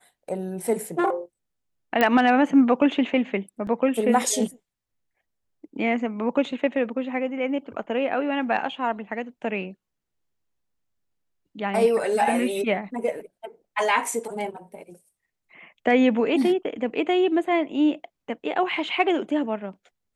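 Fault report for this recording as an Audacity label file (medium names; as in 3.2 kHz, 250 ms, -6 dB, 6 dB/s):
2.010000	2.010000	pop -8 dBFS
3.670000	3.670000	dropout 3.2 ms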